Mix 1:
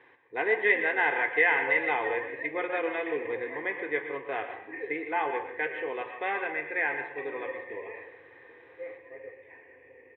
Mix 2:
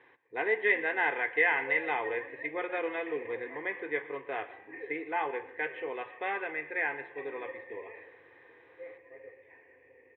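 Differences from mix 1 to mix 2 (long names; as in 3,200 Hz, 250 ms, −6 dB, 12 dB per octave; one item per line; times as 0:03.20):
speech: send −11.0 dB
background −5.5 dB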